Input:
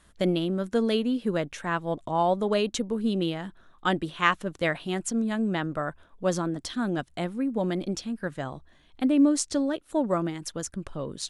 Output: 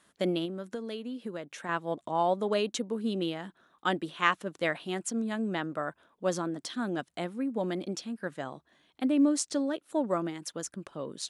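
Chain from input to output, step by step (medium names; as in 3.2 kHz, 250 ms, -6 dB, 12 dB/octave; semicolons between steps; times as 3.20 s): high-pass 200 Hz 12 dB/octave; 0.45–1.69 s: compression 10:1, threshold -31 dBFS, peak gain reduction 11 dB; trim -3 dB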